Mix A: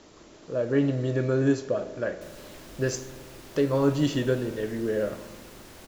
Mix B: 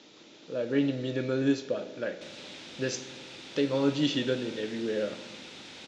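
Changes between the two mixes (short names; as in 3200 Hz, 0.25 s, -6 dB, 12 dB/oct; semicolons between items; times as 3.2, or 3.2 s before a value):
background +4.5 dB; master: add speaker cabinet 210–6300 Hz, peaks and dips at 390 Hz -5 dB, 660 Hz -7 dB, 1100 Hz -9 dB, 1700 Hz -3 dB, 2500 Hz +4 dB, 3600 Hz +8 dB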